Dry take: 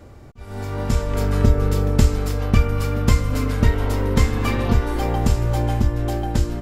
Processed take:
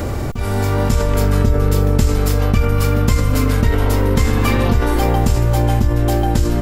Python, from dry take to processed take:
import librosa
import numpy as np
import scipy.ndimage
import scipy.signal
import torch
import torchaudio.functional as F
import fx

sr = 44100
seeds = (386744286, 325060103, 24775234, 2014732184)

y = fx.high_shelf(x, sr, hz=11000.0, db=9.0)
y = fx.env_flatten(y, sr, amount_pct=70)
y = F.gain(torch.from_numpy(y), -1.5).numpy()